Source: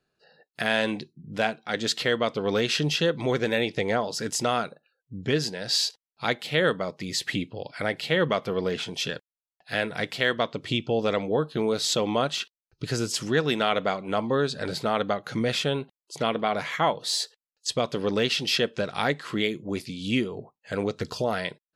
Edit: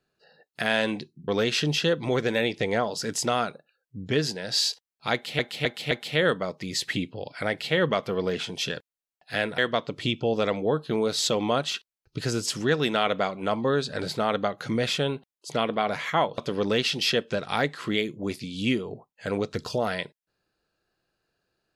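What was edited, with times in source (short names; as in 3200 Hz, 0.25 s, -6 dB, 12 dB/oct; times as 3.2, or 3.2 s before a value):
1.28–2.45 cut
6.3–6.56 loop, 4 plays
9.97–10.24 cut
17.04–17.84 cut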